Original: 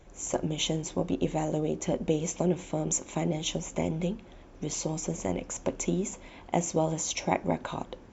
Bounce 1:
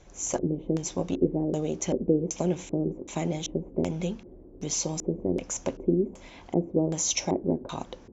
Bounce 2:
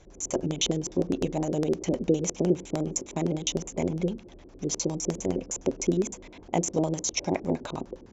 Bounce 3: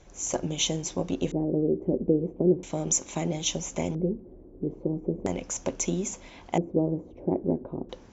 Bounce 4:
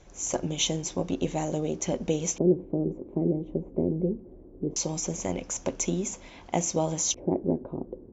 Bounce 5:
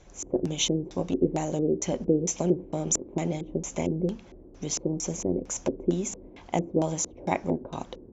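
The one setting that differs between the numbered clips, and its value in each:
LFO low-pass, rate: 1.3, 9.8, 0.38, 0.21, 2.2 Hz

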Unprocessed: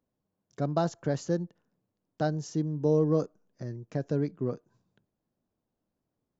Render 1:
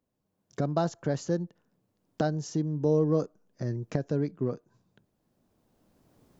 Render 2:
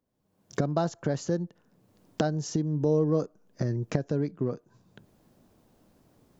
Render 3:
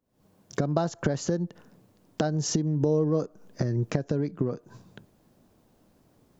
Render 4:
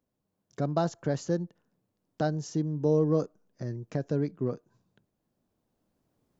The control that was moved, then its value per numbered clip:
recorder AGC, rising by: 12, 34, 89, 5.1 dB/s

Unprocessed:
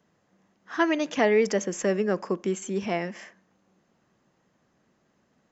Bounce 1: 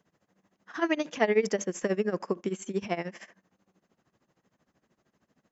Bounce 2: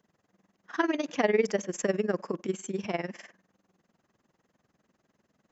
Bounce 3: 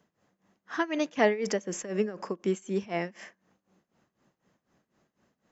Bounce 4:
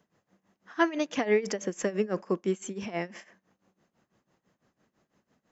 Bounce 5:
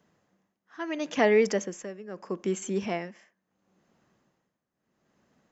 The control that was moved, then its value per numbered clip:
tremolo, rate: 13, 20, 4, 6, 0.75 Hz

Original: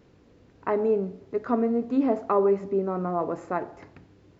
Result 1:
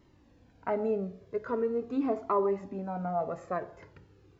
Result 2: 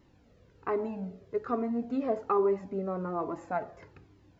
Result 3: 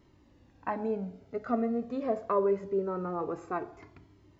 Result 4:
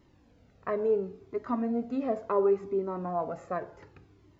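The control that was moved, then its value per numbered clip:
cascading flanger, rate: 0.42, 1.2, 0.24, 0.7 Hz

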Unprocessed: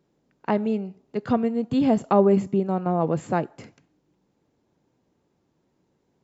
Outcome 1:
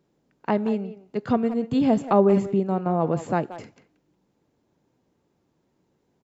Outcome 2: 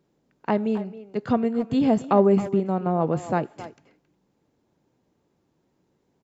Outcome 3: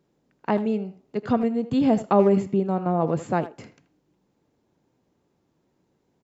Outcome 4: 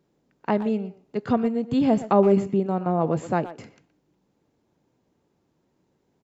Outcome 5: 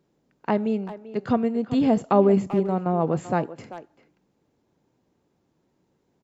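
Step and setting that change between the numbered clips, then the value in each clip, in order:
speakerphone echo, time: 180, 270, 80, 120, 390 ms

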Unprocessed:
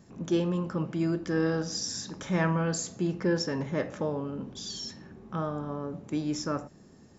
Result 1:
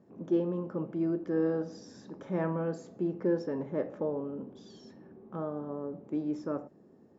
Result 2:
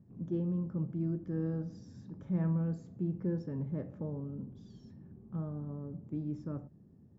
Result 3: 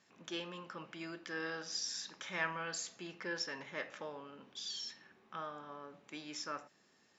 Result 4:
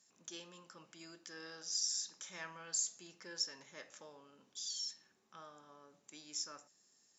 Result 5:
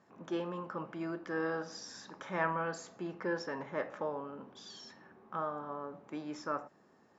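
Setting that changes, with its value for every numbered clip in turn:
band-pass, frequency: 420, 110, 2700, 8000, 1100 Hz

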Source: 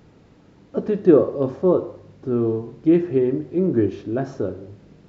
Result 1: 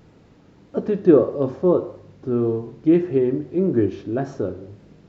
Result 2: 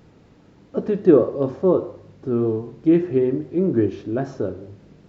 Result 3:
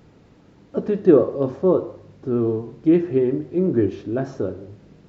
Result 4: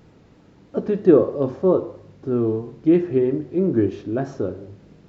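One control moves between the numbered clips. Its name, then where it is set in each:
vibrato, rate: 1.7, 5, 8.5, 3.1 Hz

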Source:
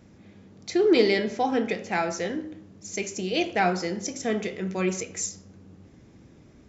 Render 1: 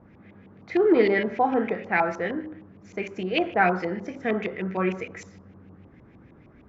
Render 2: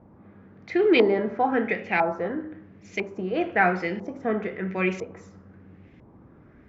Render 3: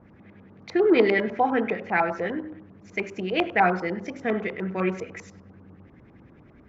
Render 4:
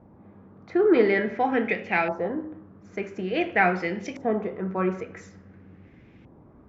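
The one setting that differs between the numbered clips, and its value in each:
LFO low-pass, rate: 6.5, 1, 10, 0.48 Hz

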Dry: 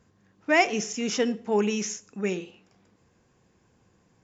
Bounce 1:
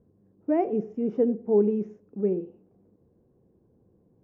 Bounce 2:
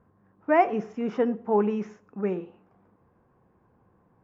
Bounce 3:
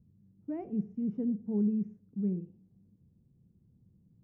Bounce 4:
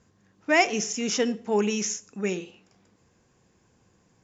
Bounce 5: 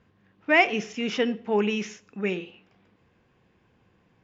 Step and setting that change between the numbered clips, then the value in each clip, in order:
synth low-pass, frequency: 440, 1100, 170, 7500, 3000 Hz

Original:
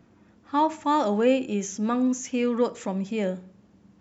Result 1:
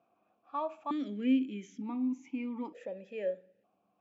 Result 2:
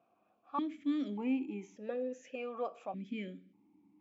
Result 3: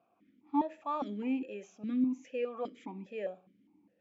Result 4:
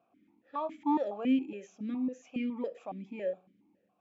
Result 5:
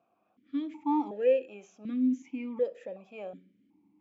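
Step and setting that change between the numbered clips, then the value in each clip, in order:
vowel sequencer, rate: 1.1, 1.7, 4.9, 7.2, 2.7 Hz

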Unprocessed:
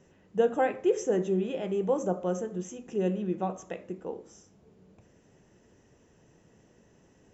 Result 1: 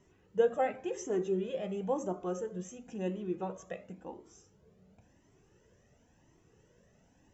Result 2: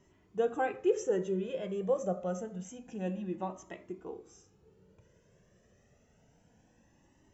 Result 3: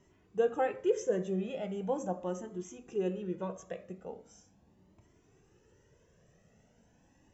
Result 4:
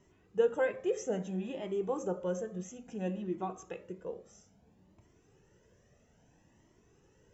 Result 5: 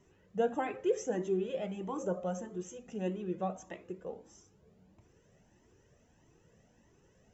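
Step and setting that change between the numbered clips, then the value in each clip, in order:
cascading flanger, rate: 0.95, 0.27, 0.4, 0.6, 1.6 Hz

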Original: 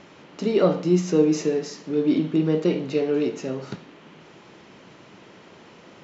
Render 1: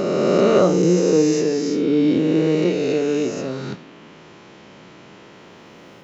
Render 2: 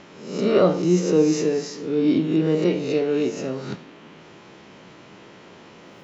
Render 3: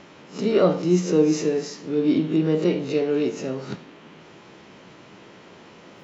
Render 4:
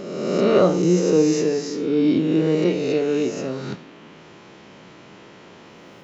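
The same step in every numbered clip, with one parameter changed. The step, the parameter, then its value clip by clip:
spectral swells, rising 60 dB in: 3.17, 0.68, 0.31, 1.47 s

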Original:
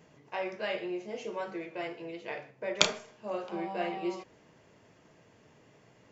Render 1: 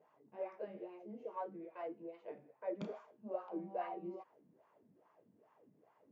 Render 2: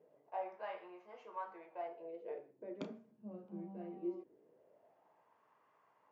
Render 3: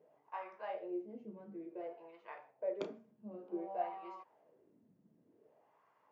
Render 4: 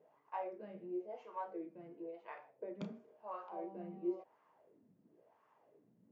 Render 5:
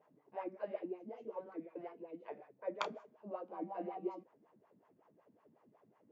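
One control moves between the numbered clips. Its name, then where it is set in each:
wah, rate: 2.4, 0.22, 0.55, 0.96, 5.4 Hz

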